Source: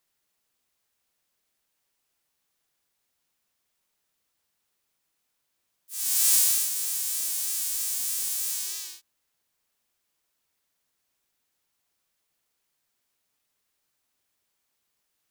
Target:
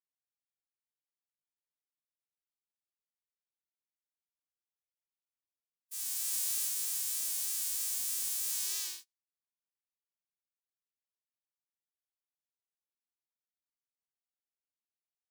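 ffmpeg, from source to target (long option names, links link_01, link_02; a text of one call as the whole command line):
ffmpeg -i in.wav -af "aecho=1:1:127|254:0.158|0.0285,agate=range=-33dB:threshold=-46dB:ratio=16:detection=peak,areverse,acompressor=threshold=-29dB:ratio=10,areverse" out.wav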